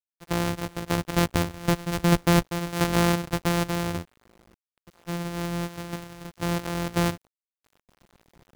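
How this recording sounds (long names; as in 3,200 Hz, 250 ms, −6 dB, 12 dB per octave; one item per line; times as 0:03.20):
a buzz of ramps at a fixed pitch in blocks of 256 samples
sample-and-hold tremolo 3.3 Hz, depth 75%
a quantiser's noise floor 10 bits, dither none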